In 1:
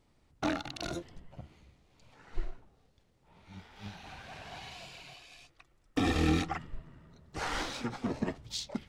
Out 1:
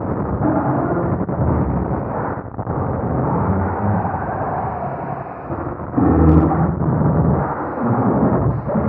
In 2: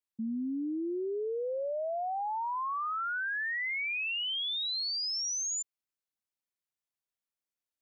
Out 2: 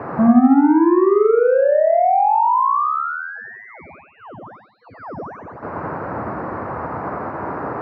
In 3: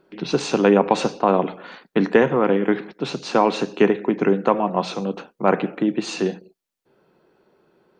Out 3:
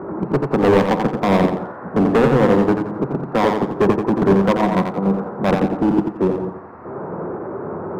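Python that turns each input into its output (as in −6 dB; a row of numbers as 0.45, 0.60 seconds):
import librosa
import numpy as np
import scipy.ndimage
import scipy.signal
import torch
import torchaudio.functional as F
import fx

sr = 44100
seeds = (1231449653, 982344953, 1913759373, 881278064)

y = fx.delta_mod(x, sr, bps=32000, step_db=-23.0)
y = scipy.signal.sosfilt(scipy.signal.butter(4, 77.0, 'highpass', fs=sr, output='sos'), y)
y = fx.spec_gate(y, sr, threshold_db=-25, keep='strong')
y = scipy.signal.sosfilt(scipy.signal.cheby2(4, 50, 3100.0, 'lowpass', fs=sr, output='sos'), y)
y = fx.dynamic_eq(y, sr, hz=150.0, q=0.94, threshold_db=-35.0, ratio=4.0, max_db=4)
y = np.clip(10.0 ** (17.0 / 20.0) * y, -1.0, 1.0) / 10.0 ** (17.0 / 20.0)
y = fx.echo_feedback(y, sr, ms=87, feedback_pct=37, wet_db=-3.5)
y = fx.upward_expand(y, sr, threshold_db=-40.0, expansion=1.5)
y = y * 10.0 ** (-18 / 20.0) / np.sqrt(np.mean(np.square(y)))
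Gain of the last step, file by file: +14.0, +16.0, +6.5 decibels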